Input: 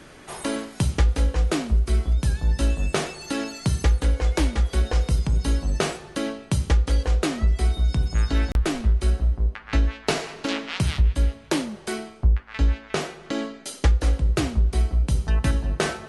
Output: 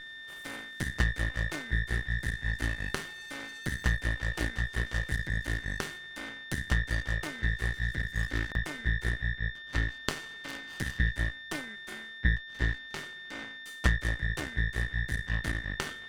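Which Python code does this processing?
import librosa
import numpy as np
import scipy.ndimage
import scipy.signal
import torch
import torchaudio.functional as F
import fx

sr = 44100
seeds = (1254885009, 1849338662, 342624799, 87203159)

y = fx.lower_of_two(x, sr, delay_ms=0.67)
y = y + 10.0 ** (-24.0 / 20.0) * np.sin(2.0 * np.pi * 1800.0 * np.arange(len(y)) / sr)
y = fx.cheby_harmonics(y, sr, harmonics=(3, 5, 6), levels_db=(-9, -29, -26), full_scale_db=-7.0)
y = y * librosa.db_to_amplitude(-1.0)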